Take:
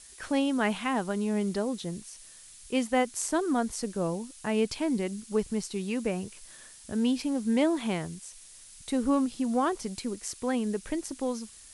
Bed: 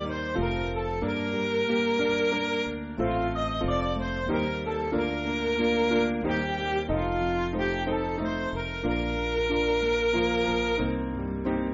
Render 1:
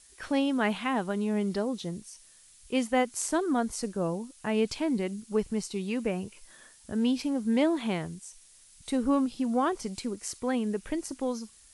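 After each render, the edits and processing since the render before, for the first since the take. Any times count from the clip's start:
noise reduction from a noise print 6 dB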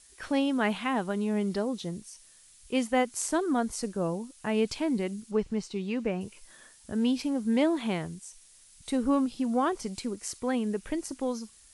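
0:05.31–0:06.21: high-frequency loss of the air 80 metres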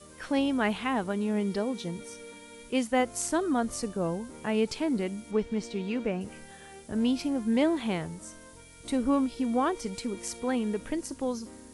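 mix in bed −21 dB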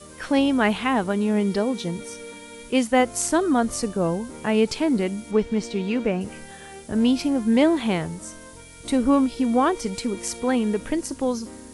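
level +7 dB

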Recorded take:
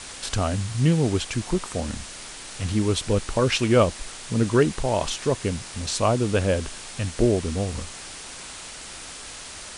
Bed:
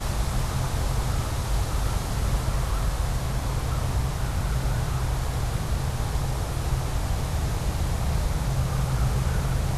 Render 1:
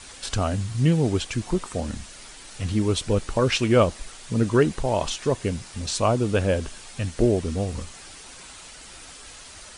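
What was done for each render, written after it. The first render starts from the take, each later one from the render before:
broadband denoise 7 dB, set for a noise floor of −39 dBFS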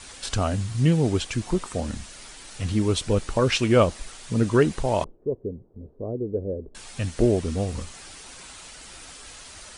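0:05.04–0:06.75: transistor ladder low-pass 490 Hz, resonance 55%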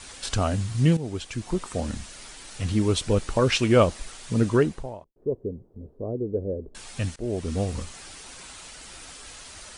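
0:00.97–0:01.84: fade in, from −12.5 dB
0:04.39–0:05.16: fade out and dull
0:07.16–0:07.57: fade in, from −23.5 dB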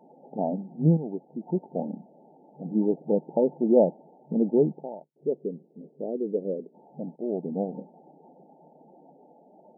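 brick-wall band-pass 140–910 Hz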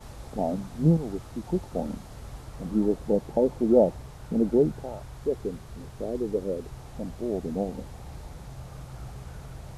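mix in bed −16.5 dB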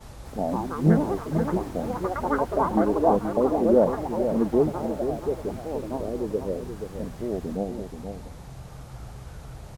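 delay with pitch and tempo change per echo 247 ms, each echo +5 semitones, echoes 3
single-tap delay 478 ms −8 dB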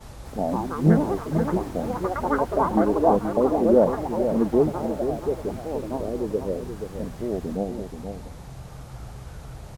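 level +1.5 dB

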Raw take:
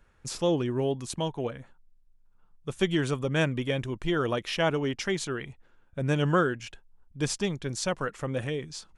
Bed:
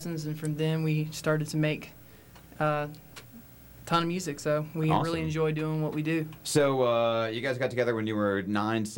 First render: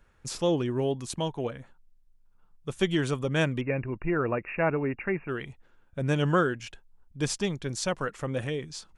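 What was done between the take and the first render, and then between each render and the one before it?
0:03.61–0:05.29: linear-phase brick-wall low-pass 2,800 Hz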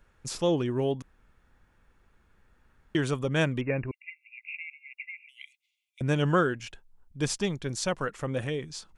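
0:01.02–0:02.95: fill with room tone
0:03.91–0:06.01: linear-phase brick-wall high-pass 2,000 Hz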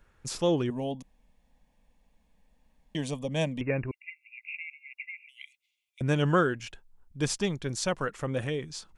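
0:00.70–0:03.61: phaser with its sweep stopped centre 370 Hz, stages 6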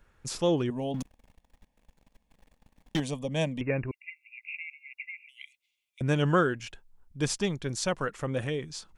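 0:00.94–0:03.00: leveller curve on the samples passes 3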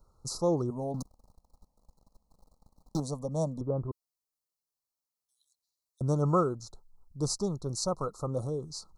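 Chebyshev band-stop filter 1,300–4,000 Hz, order 5
parametric band 260 Hz −4 dB 0.75 octaves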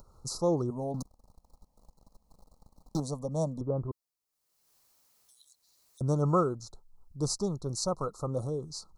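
upward compression, threshold −48 dBFS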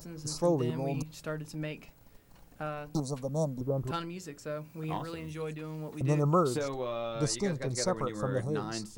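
mix in bed −10 dB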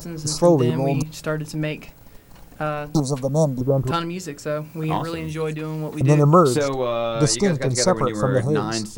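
level +12 dB

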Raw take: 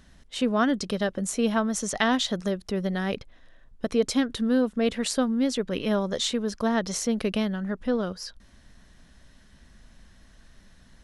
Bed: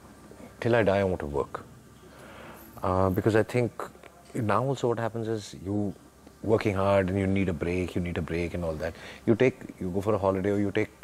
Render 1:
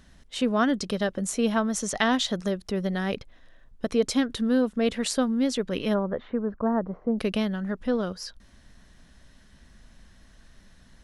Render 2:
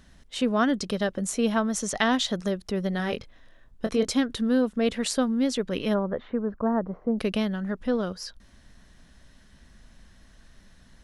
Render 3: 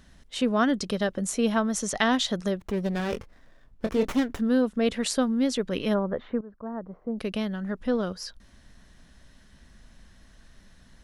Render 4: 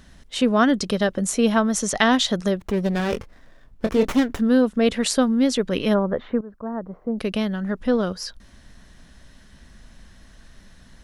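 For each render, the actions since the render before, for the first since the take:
0:05.93–0:07.18: low-pass filter 1,900 Hz → 1,000 Hz 24 dB per octave
0:02.97–0:04.11: double-tracking delay 23 ms −7.5 dB
0:02.56–0:04.40: windowed peak hold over 9 samples; 0:06.41–0:07.93: fade in, from −17 dB
level +5.5 dB

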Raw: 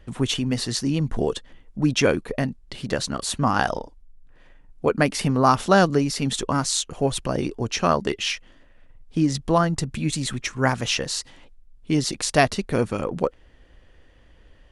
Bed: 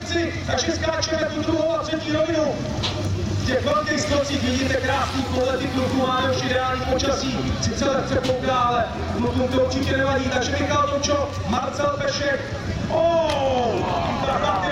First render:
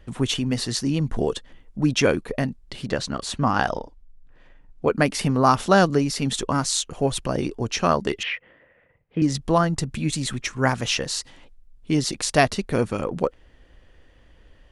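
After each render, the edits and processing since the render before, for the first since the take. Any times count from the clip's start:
0:02.86–0:04.91: high-frequency loss of the air 52 metres
0:08.23–0:09.22: loudspeaker in its box 110–2,700 Hz, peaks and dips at 260 Hz −8 dB, 500 Hz +9 dB, 2,000 Hz +8 dB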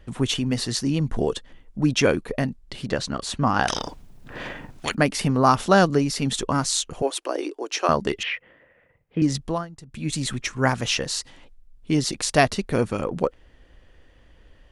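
0:03.68–0:04.95: every bin compressed towards the loudest bin 10 to 1
0:07.02–0:07.89: elliptic high-pass filter 300 Hz
0:09.34–0:10.18: duck −18 dB, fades 0.33 s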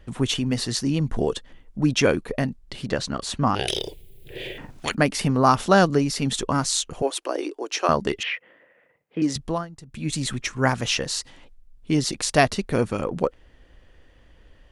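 0:03.55–0:04.58: drawn EQ curve 130 Hz 0 dB, 260 Hz −14 dB, 380 Hz +10 dB, 1,200 Hz −24 dB, 2,200 Hz +2 dB, 3,400 Hz +7 dB, 5,800 Hz −7 dB, 12,000 Hz +13 dB
0:08.20–0:09.36: high-pass filter 230 Hz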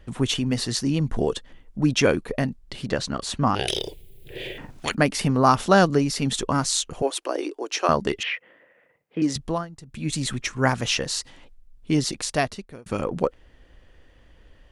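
0:11.99–0:12.86: fade out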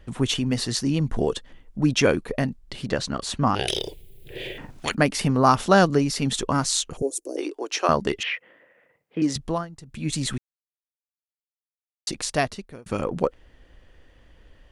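0:06.97–0:07.37: drawn EQ curve 440 Hz 0 dB, 710 Hz −14 dB, 1,200 Hz −29 dB, 3,000 Hz −27 dB, 6,700 Hz +3 dB
0:10.38–0:12.07: silence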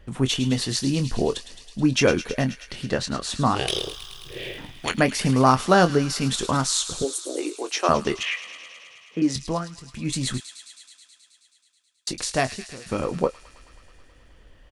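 double-tracking delay 23 ms −10 dB
delay with a high-pass on its return 107 ms, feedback 79%, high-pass 2,200 Hz, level −11 dB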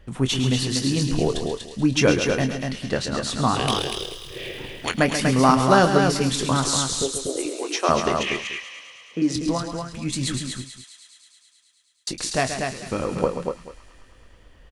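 multi-tap delay 134/242/438 ms −9.5/−5/−19 dB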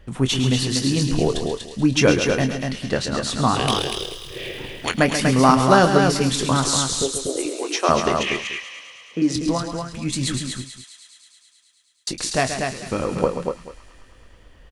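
level +2 dB
brickwall limiter −1 dBFS, peak gain reduction 0.5 dB

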